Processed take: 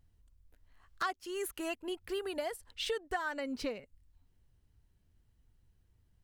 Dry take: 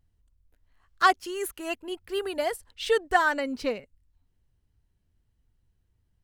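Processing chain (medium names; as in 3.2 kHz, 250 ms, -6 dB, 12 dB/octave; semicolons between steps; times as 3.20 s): compression 4:1, threshold -37 dBFS, peak gain reduction 18.5 dB; trim +1.5 dB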